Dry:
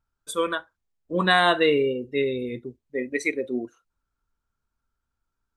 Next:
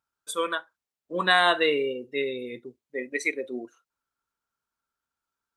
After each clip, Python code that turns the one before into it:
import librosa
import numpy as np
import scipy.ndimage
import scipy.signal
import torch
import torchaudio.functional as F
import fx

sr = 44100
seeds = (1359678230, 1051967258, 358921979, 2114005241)

y = fx.highpass(x, sr, hz=550.0, slope=6)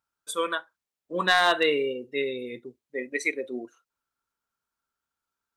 y = np.clip(x, -10.0 ** (-11.5 / 20.0), 10.0 ** (-11.5 / 20.0))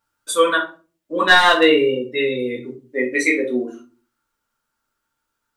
y = fx.rider(x, sr, range_db=5, speed_s=2.0)
y = fx.room_shoebox(y, sr, seeds[0], volume_m3=180.0, walls='furnished', distance_m=2.5)
y = y * 10.0 ** (2.5 / 20.0)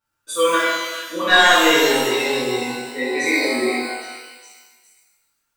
y = fx.echo_stepped(x, sr, ms=408, hz=2500.0, octaves=0.7, feedback_pct=70, wet_db=-7.5)
y = fx.rev_shimmer(y, sr, seeds[1], rt60_s=1.2, semitones=12, shimmer_db=-8, drr_db=-7.5)
y = y * 10.0 ** (-8.0 / 20.0)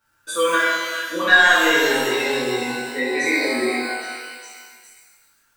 y = fx.peak_eq(x, sr, hz=1600.0, db=9.0, octaves=0.26)
y = fx.band_squash(y, sr, depth_pct=40)
y = y * 10.0 ** (-2.5 / 20.0)